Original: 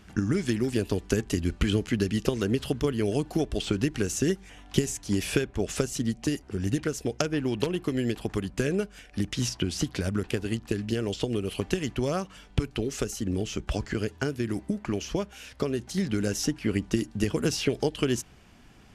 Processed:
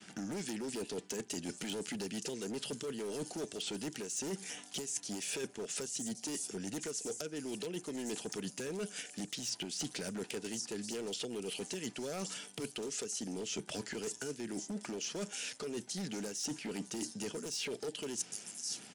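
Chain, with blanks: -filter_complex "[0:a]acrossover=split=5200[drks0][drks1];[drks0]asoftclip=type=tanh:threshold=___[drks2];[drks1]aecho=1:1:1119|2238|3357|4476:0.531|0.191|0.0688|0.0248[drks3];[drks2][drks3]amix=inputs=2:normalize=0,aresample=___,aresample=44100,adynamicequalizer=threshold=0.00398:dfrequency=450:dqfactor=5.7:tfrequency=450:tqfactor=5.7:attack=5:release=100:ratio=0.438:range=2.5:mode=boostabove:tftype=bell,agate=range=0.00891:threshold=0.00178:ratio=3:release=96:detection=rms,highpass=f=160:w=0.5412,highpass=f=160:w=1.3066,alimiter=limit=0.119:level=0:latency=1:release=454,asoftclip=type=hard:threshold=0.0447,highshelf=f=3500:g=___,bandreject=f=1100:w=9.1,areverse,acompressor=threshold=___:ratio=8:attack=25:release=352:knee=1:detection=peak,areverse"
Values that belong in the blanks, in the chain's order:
0.0944, 22050, 11.5, 0.0126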